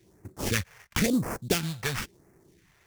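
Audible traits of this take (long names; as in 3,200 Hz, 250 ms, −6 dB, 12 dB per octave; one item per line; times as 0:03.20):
aliases and images of a low sample rate 4,000 Hz, jitter 20%
phaser sweep stages 2, 0.97 Hz, lowest notch 250–3,300 Hz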